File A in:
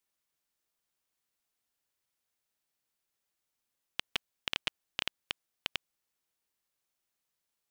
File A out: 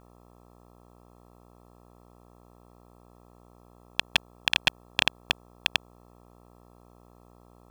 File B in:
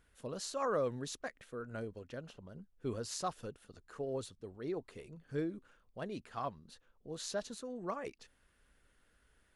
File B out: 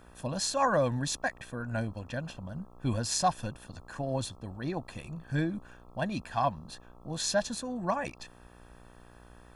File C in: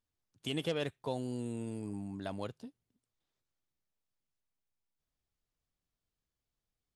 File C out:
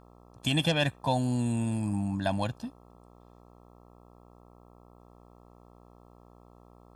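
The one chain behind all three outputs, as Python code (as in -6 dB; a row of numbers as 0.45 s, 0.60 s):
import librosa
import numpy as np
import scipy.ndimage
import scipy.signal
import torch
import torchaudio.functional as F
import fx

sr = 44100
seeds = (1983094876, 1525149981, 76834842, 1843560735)

y = x + 0.88 * np.pad(x, (int(1.2 * sr / 1000.0), 0))[:len(x)]
y = fx.dmg_buzz(y, sr, base_hz=60.0, harmonics=22, level_db=-64.0, tilt_db=-3, odd_only=False)
y = F.gain(torch.from_numpy(y), 8.5).numpy()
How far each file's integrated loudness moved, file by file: +10.5 LU, +8.5 LU, +9.5 LU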